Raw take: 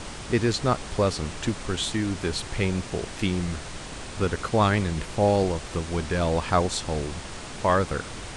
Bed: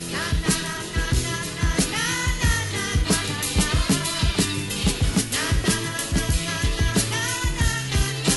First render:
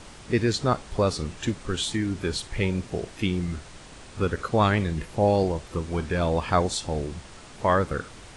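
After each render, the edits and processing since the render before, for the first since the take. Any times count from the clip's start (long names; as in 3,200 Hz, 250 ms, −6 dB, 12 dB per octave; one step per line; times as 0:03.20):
noise reduction from a noise print 8 dB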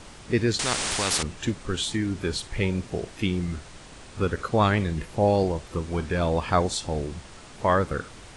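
0:00.59–0:01.23: every bin compressed towards the loudest bin 4 to 1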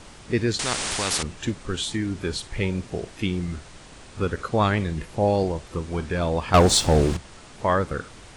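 0:06.54–0:07.17: leveller curve on the samples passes 3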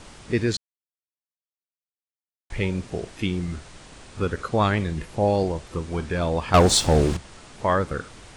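0:00.57–0:02.50: silence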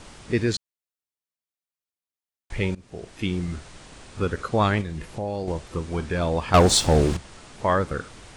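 0:02.75–0:03.33: fade in, from −22.5 dB
0:04.81–0:05.48: downward compressor 2.5 to 1, threshold −29 dBFS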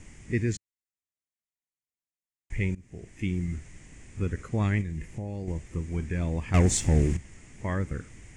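drawn EQ curve 100 Hz 0 dB, 320 Hz −5 dB, 550 Hz −14 dB, 1,400 Hz −16 dB, 2,000 Hz −1 dB, 4,100 Hz −20 dB, 6,900 Hz −2 dB, 15,000 Hz −18 dB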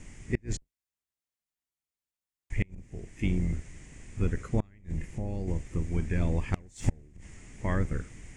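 sub-octave generator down 2 octaves, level −1 dB
gate with flip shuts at −14 dBFS, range −32 dB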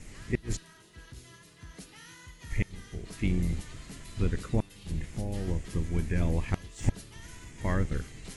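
mix in bed −26 dB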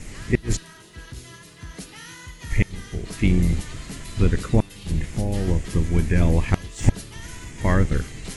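level +9.5 dB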